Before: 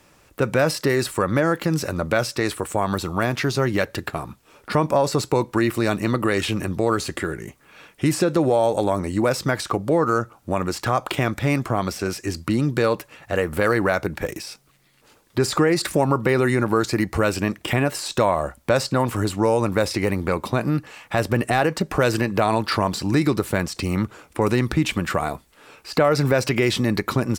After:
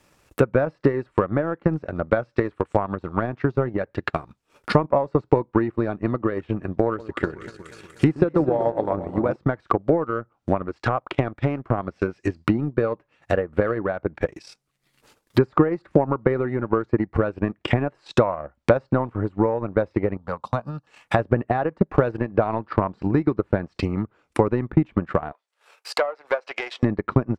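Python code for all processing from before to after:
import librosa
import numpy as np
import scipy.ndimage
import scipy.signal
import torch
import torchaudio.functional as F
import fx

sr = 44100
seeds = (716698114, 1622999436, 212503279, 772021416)

y = fx.chain(x, sr, fx.high_shelf(hz=4200.0, db=6.0),
    fx.echo_alternate(ms=121, hz=880.0, feedback_pct=76, wet_db=-7), at=(6.86, 9.36))
y = fx.chain(y, sr, fx.law_mismatch(coded='A'),
    fx.peak_eq(hz=180.0, db=-6.5, octaves=0.37),
    fx.doppler_dist(depth_ms=0.1), at=(10.68, 11.64))
y = fx.chain(y, sr, fx.highpass(hz=130.0, slope=6),
    fx.fixed_phaser(hz=860.0, stages=4), at=(20.17, 20.87))
y = fx.chain(y, sr, fx.halfwave_gain(db=-7.0),
    fx.highpass(hz=520.0, slope=24), at=(25.32, 26.83))
y = fx.env_lowpass_down(y, sr, base_hz=1300.0, full_db=-19.5)
y = fx.transient(y, sr, attack_db=11, sustain_db=-12)
y = F.gain(torch.from_numpy(y), -5.5).numpy()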